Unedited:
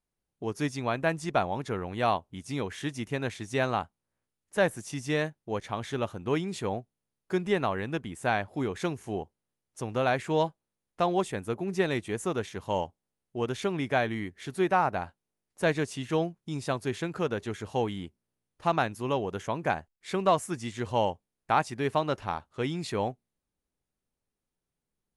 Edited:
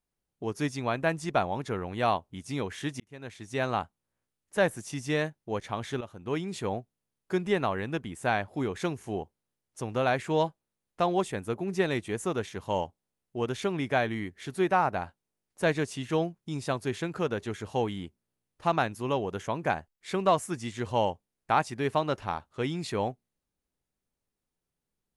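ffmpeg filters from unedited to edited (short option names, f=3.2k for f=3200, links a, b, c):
-filter_complex "[0:a]asplit=3[a][b][c];[a]atrim=end=3,asetpts=PTS-STARTPTS,afade=t=out:st=2.996:d=0.004:c=hsin[d];[b]atrim=start=3:end=6.01,asetpts=PTS-STARTPTS,afade=t=in:d=0.78,afade=t=out:st=3.006:d=0.004:c=hsin:silence=0.237137[e];[c]atrim=start=6.01,asetpts=PTS-STARTPTS,afade=t=in:d=0.78:c=qsin:silence=0.237137[f];[d][e][f]concat=n=3:v=0:a=1"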